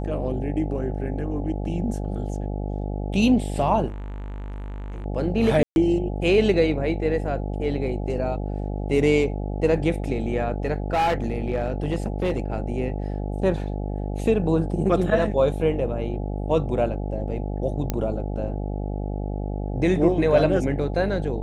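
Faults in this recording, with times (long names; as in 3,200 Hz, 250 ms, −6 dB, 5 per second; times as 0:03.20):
mains buzz 50 Hz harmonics 17 −28 dBFS
0:03.87–0:05.06: clipping −30.5 dBFS
0:05.63–0:05.76: drop-out 131 ms
0:10.93–0:12.58: clipping −18 dBFS
0:17.90: click −10 dBFS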